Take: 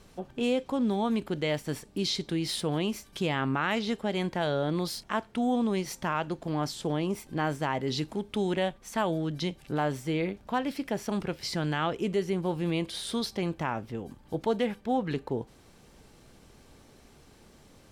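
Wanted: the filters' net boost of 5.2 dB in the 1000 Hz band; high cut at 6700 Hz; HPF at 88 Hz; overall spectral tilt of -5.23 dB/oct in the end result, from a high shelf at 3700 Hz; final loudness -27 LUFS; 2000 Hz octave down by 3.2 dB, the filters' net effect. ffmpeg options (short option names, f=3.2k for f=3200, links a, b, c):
-af "highpass=88,lowpass=6.7k,equalizer=f=1k:t=o:g=8.5,equalizer=f=2k:t=o:g=-7,highshelf=f=3.7k:g=-3.5,volume=2.5dB"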